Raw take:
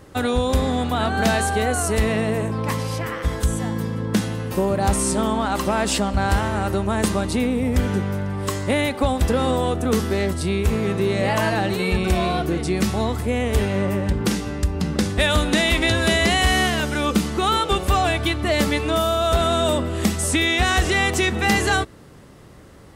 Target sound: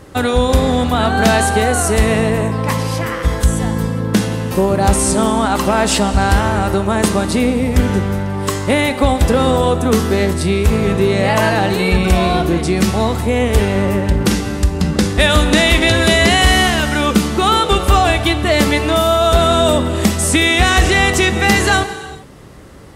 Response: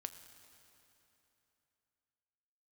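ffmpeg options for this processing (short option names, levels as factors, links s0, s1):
-filter_complex "[0:a]asplit=2[s0][s1];[1:a]atrim=start_sample=2205,afade=t=out:st=0.31:d=0.01,atrim=end_sample=14112,asetrate=27342,aresample=44100[s2];[s1][s2]afir=irnorm=-1:irlink=0,volume=3.55[s3];[s0][s3]amix=inputs=2:normalize=0,volume=0.531"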